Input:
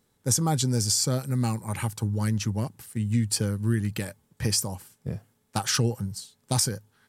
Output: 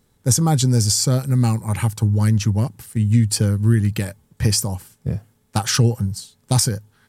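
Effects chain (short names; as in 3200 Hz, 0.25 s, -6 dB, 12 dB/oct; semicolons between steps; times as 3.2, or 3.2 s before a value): low shelf 120 Hz +9.5 dB; gain +5 dB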